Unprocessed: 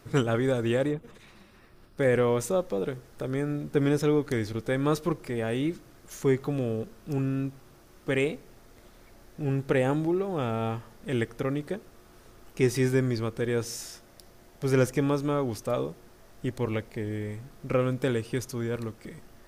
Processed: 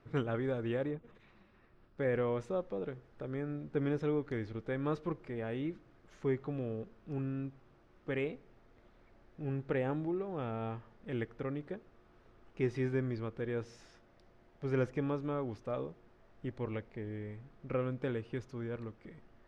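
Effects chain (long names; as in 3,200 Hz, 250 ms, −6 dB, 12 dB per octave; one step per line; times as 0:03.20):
low-pass filter 2,700 Hz 12 dB per octave
level −9 dB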